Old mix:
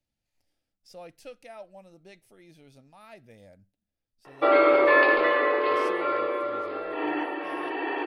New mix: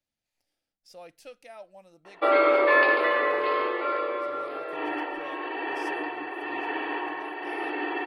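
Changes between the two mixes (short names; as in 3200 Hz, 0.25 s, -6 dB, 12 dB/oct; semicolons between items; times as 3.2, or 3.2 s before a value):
background: entry -2.20 s; master: add low shelf 230 Hz -11 dB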